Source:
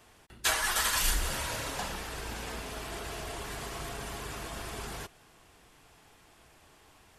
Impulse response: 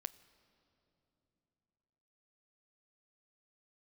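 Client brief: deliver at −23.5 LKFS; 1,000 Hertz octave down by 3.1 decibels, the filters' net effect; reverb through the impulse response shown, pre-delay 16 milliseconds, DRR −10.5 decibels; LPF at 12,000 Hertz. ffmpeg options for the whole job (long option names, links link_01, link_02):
-filter_complex "[0:a]lowpass=12000,equalizer=frequency=1000:width_type=o:gain=-4,asplit=2[link_01][link_02];[1:a]atrim=start_sample=2205,adelay=16[link_03];[link_02][link_03]afir=irnorm=-1:irlink=0,volume=13.5dB[link_04];[link_01][link_04]amix=inputs=2:normalize=0"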